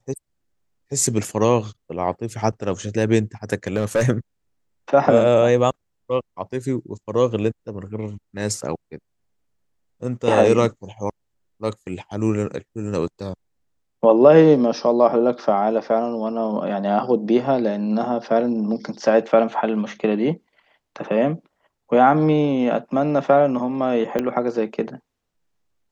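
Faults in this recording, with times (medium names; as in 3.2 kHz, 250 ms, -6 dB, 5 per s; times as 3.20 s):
3.67–4.06 s: clipped -14 dBFS
24.19 s: pop -10 dBFS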